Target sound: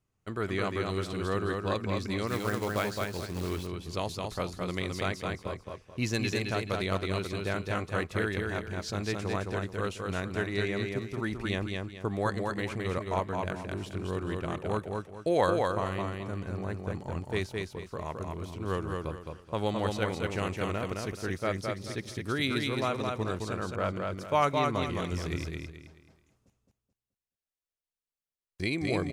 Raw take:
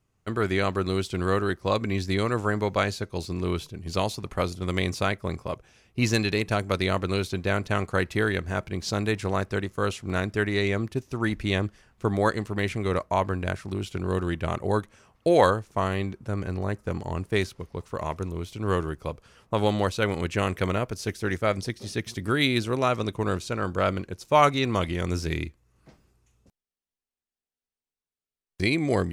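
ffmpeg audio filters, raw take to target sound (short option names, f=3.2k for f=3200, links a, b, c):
-filter_complex "[0:a]aecho=1:1:215|430|645|860:0.668|0.207|0.0642|0.0199,asettb=1/sr,asplit=3[a][b][c];[a]atrim=end=2.274[d];[b]atrim=start=2.27:end=3.67,asetpts=PTS-STARTPTS,afade=t=in:d=0.004:c=qsin,afade=t=out:st=1.396:d=0.004:c=qsin,acrusher=bits=3:mode=log:mix=0:aa=0.000001[e];[c]atrim=start=3.666[f];[d][e]acrossfade=d=0.004:c1=hsin:c2=qsin[g];[g][f]acrossfade=d=0.004:c1=qsin:c2=hsin,asettb=1/sr,asplit=3[h][i][j];[h]atrim=end=23.764[k];[i]atrim=start=23.76:end=24.82,asetpts=PTS-STARTPTS,afade=t=in:d=0.004:c=qsin,afade=t=out:st=1.056:d=0.004:c=qsin,adynamicequalizer=threshold=0.0251:dfrequency=2000:dqfactor=0.7:tfrequency=2000:tqfactor=0.7:attack=5:release=100:ratio=0.375:range=2.5:mode=cutabove:tftype=highshelf[l];[j]atrim=start=24.816[m];[k][l]acrossfade=d=0.004:c1=hsin:c2=qsin[n];[n][m]acrossfade=d=0.004:c1=qsin:c2=hsin,volume=-7dB"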